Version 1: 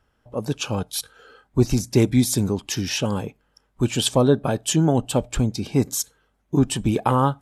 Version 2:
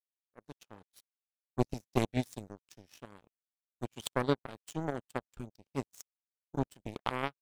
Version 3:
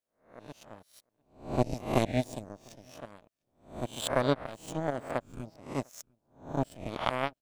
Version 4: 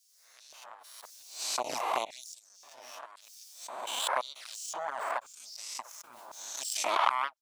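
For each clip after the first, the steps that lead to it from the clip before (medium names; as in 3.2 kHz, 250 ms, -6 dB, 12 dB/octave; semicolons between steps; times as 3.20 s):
power-law waveshaper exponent 3; trim -4 dB
reverse spectral sustain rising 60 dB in 0.41 s; graphic EQ with 31 bands 400 Hz -4 dB, 630 Hz +8 dB, 16 kHz -6 dB; echo from a far wall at 120 m, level -29 dB; trim +1.5 dB
touch-sensitive flanger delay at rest 10.6 ms, full sweep at -23.5 dBFS; LFO high-pass square 0.95 Hz 990–5400 Hz; swell ahead of each attack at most 30 dB/s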